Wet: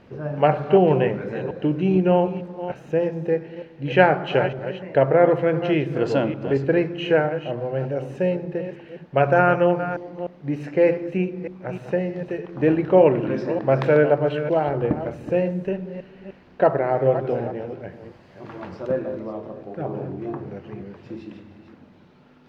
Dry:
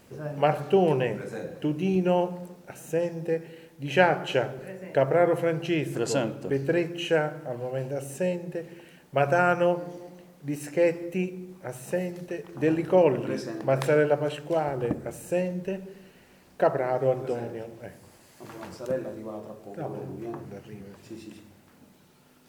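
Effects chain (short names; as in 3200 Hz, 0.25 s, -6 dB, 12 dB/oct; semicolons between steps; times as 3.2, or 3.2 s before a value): reverse delay 0.302 s, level -11 dB; air absorption 270 m; gain +6 dB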